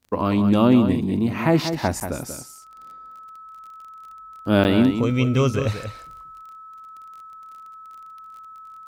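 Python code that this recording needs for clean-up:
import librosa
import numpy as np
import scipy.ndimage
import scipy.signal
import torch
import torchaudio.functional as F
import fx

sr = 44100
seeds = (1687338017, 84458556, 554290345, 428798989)

y = fx.fix_declick_ar(x, sr, threshold=6.5)
y = fx.notch(y, sr, hz=1300.0, q=30.0)
y = fx.fix_interpolate(y, sr, at_s=(2.0, 4.64), length_ms=9.4)
y = fx.fix_echo_inverse(y, sr, delay_ms=186, level_db=-8.5)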